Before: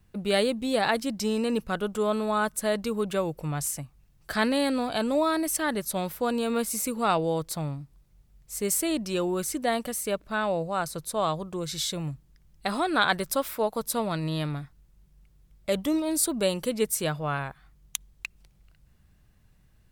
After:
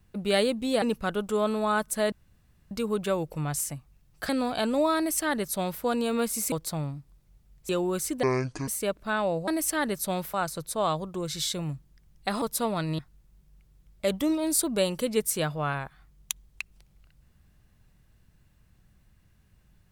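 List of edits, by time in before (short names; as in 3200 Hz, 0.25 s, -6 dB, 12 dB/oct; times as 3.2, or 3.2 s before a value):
0.82–1.48 cut
2.78 insert room tone 0.59 s
4.36–4.66 cut
5.34–6.2 copy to 10.72
6.89–7.36 cut
8.53–9.13 cut
9.67–9.92 speed 56%
12.8–13.76 cut
14.33–14.63 cut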